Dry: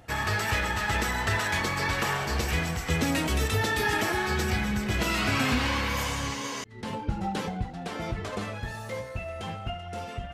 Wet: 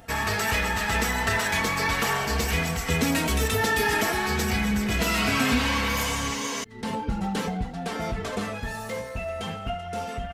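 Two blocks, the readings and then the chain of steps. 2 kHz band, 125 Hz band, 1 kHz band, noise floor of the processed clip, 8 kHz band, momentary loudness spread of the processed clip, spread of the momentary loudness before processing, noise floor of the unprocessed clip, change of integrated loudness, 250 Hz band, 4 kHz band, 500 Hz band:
+2.5 dB, 0.0 dB, +3.0 dB, −36 dBFS, +5.0 dB, 10 LU, 11 LU, −40 dBFS, +3.0 dB, +3.5 dB, +3.0 dB, +3.5 dB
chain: high-shelf EQ 9,100 Hz +6 dB
in parallel at −7 dB: soft clipping −29 dBFS, distortion −9 dB
on the sum: comb filter 4.4 ms, depth 44%

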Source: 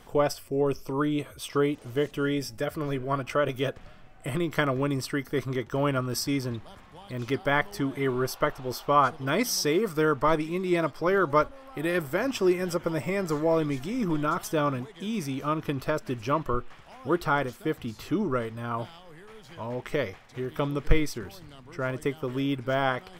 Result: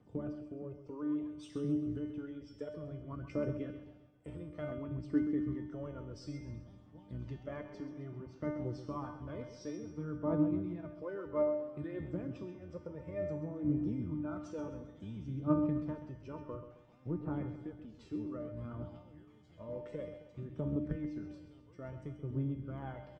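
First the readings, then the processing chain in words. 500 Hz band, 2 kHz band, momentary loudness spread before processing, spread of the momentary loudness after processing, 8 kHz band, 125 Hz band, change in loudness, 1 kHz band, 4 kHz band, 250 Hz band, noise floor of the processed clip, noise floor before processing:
−14.0 dB, −24.0 dB, 9 LU, 15 LU, below −25 dB, −8.5 dB, −11.5 dB, −21.5 dB, below −25 dB, −7.5 dB, −60 dBFS, −50 dBFS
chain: sub-octave generator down 1 octave, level −2 dB
high-pass filter 120 Hz 12 dB per octave
treble cut that deepens with the level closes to 3,000 Hz, closed at −23.5 dBFS
Butterworth low-pass 8,300 Hz
tilt shelving filter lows +10 dB, about 670 Hz
downward compressor 4 to 1, threshold −28 dBFS, peak gain reduction 13.5 dB
phase shifter 0.58 Hz, delay 2.3 ms, feedback 52%
tuned comb filter 300 Hz, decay 0.87 s, mix 90%
on a send: repeating echo 133 ms, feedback 51%, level −10 dB
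on the sum: multiband upward and downward expander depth 40%
level +5 dB

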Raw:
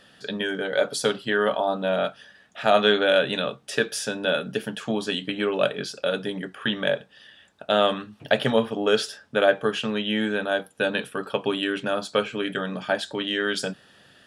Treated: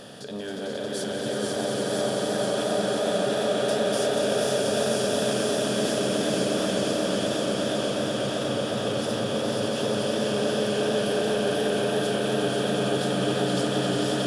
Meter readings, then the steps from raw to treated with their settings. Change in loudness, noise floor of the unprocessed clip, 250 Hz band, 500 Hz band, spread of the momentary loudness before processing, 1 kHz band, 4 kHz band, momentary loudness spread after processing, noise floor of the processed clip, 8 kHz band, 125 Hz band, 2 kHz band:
−0.5 dB, −56 dBFS, +2.0 dB, 0.0 dB, 8 LU, −2.5 dB, −1.5 dB, 3 LU, −32 dBFS, +6.0 dB, +5.0 dB, −6.0 dB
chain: compressor on every frequency bin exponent 0.6
parametric band 1,900 Hz −10.5 dB 2 octaves
downward compressor, threshold −26 dBFS, peak gain reduction 11.5 dB
brickwall limiter −22 dBFS, peak gain reduction 10.5 dB
on a send: echo that builds up and dies away 90 ms, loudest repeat 8, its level −5 dB
on the sum: feedback echo with a swinging delay time 488 ms, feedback 79%, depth 72 cents, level −3.5 dB
level −2.5 dB

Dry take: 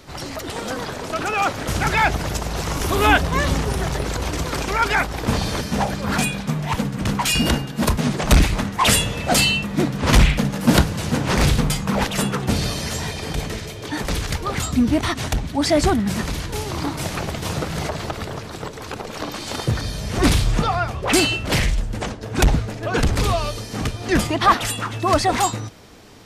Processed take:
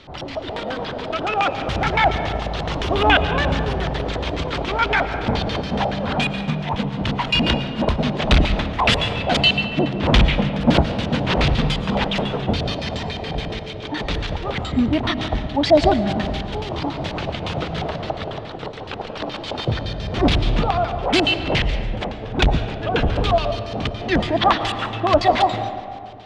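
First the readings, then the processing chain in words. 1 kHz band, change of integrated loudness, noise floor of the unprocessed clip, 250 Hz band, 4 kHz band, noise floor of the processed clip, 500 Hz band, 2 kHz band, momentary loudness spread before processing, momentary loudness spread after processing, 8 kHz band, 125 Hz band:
+1.0 dB, 0.0 dB, −34 dBFS, −0.5 dB, +1.5 dB, −32 dBFS, +3.0 dB, 0.0 dB, 11 LU, 11 LU, −15.5 dB, −1.0 dB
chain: auto-filter low-pass square 7.1 Hz 720–3,400 Hz
comb and all-pass reverb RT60 2.1 s, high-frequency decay 0.45×, pre-delay 80 ms, DRR 9.5 dB
level −1.5 dB

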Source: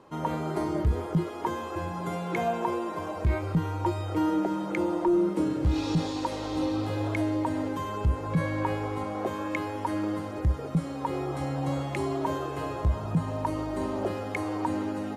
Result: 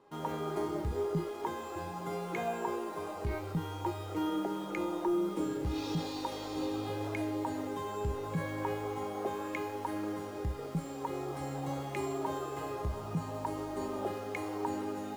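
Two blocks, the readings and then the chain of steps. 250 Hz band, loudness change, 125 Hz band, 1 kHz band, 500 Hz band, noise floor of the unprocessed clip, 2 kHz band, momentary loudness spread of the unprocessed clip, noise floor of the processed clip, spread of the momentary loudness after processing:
−7.5 dB, −7.0 dB, −9.5 dB, −5.5 dB, −5.0 dB, −36 dBFS, −6.0 dB, 5 LU, −42 dBFS, 4 LU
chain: low-shelf EQ 84 Hz −7.5 dB
in parallel at −6 dB: bit reduction 7 bits
on the sum: tuned comb filter 410 Hz, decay 0.71 s, mix 90%
level +8.5 dB

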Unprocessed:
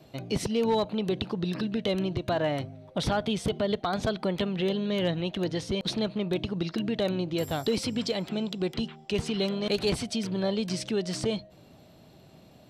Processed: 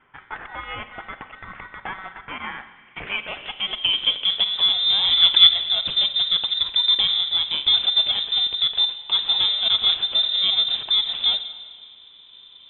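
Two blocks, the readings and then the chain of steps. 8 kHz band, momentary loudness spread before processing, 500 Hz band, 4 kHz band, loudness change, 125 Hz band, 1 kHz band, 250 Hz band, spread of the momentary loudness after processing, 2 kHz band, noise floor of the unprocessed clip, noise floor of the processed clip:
below −40 dB, 4 LU, −15.5 dB, +20.5 dB, +12.0 dB, below −15 dB, 0.0 dB, below −15 dB, 19 LU, +7.0 dB, −54 dBFS, −49 dBFS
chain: stylus tracing distortion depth 0.18 ms
gain on a spectral selection 0:05.12–0:05.53, 200–2,500 Hz +11 dB
in parallel at −3.5 dB: sample-rate reduction 2,100 Hz, jitter 0%
on the sum: four-comb reverb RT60 1.7 s, combs from 31 ms, DRR 11 dB
high-pass filter sweep 2,100 Hz → 240 Hz, 0:02.74–0:04.88
voice inversion scrambler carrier 3,800 Hz

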